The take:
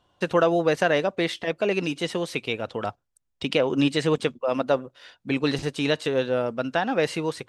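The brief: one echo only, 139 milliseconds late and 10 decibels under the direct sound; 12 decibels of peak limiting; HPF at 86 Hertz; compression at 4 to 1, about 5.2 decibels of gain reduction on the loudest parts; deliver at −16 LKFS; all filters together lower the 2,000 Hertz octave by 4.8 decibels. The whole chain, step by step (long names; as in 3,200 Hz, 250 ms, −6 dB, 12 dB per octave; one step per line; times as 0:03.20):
high-pass filter 86 Hz
parametric band 2,000 Hz −6.5 dB
downward compressor 4 to 1, threshold −23 dBFS
brickwall limiter −24 dBFS
single-tap delay 139 ms −10 dB
level +18 dB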